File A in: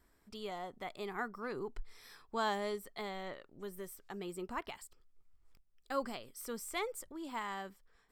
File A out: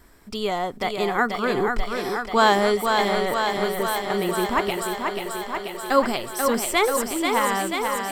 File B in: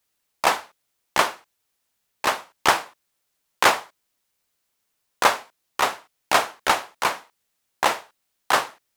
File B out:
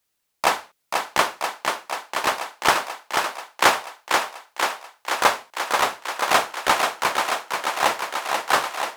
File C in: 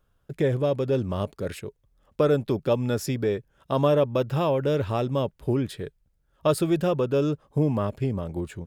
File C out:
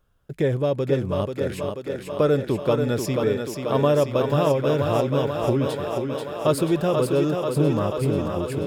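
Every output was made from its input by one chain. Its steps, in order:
thinning echo 486 ms, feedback 77%, high-pass 170 Hz, level -4.5 dB; normalise loudness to -23 LUFS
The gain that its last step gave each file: +17.5 dB, 0.0 dB, +1.5 dB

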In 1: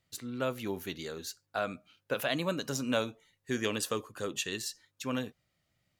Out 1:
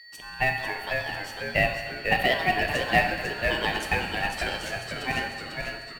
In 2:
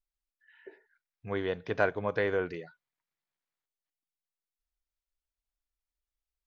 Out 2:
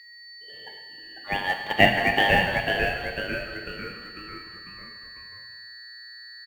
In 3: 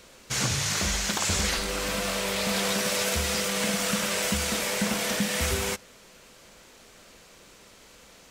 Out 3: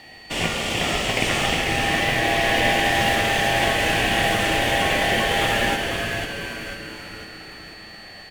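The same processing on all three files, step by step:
high-order bell 990 Hz +16 dB 2.5 oct; whistle 3.2 kHz -38 dBFS; in parallel at -3 dB: short-mantissa float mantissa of 2-bit; on the sum: ring modulator 1.3 kHz; on a send: frequency-shifting echo 497 ms, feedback 51%, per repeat -120 Hz, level -5 dB; on the sum: gated-style reverb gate 490 ms falling, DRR 5 dB; trim -8 dB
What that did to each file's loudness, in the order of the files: +8.5 LU, +8.5 LU, +6.0 LU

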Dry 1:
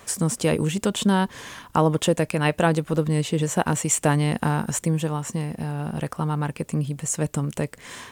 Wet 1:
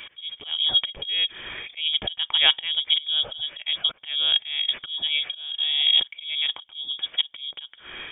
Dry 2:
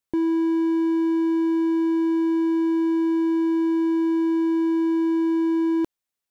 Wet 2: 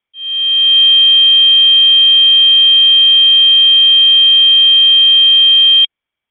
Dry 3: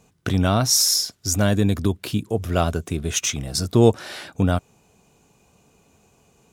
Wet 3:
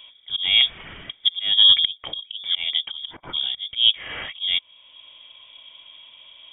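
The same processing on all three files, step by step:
slow attack 665 ms; small resonant body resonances 230/1200 Hz, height 12 dB, ringing for 25 ms; frequency inversion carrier 3.5 kHz; peak normalisation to -3 dBFS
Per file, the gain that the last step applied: +4.0 dB, +7.5 dB, +6.5 dB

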